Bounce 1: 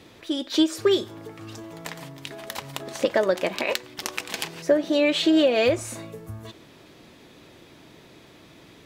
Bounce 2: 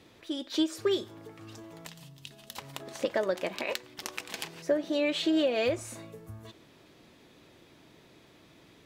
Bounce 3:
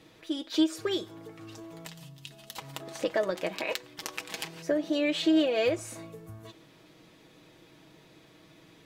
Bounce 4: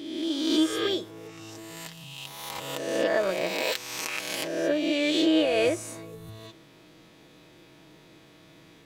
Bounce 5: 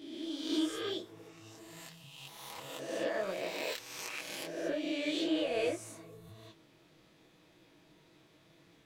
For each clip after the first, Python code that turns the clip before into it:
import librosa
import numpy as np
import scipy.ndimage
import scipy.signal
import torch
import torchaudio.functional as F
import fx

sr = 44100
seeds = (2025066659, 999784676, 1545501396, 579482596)

y1 = fx.spec_box(x, sr, start_s=1.86, length_s=0.71, low_hz=250.0, high_hz=2500.0, gain_db=-10)
y1 = F.gain(torch.from_numpy(y1), -7.5).numpy()
y2 = y1 + 0.46 * np.pad(y1, (int(6.3 * sr / 1000.0), 0))[:len(y1)]
y3 = fx.spec_swells(y2, sr, rise_s=1.33)
y4 = fx.detune_double(y3, sr, cents=59)
y4 = F.gain(torch.from_numpy(y4), -6.0).numpy()